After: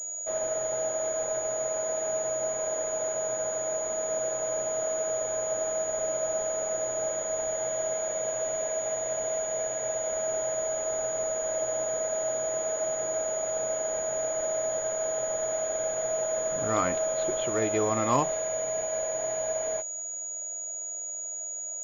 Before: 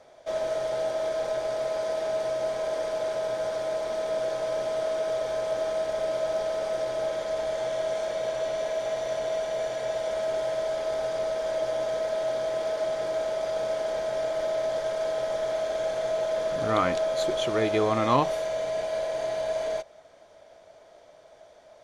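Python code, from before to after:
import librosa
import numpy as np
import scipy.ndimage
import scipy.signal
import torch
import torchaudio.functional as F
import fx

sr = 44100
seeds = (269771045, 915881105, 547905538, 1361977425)

y = fx.pwm(x, sr, carrier_hz=6800.0)
y = y * librosa.db_to_amplitude(-2.5)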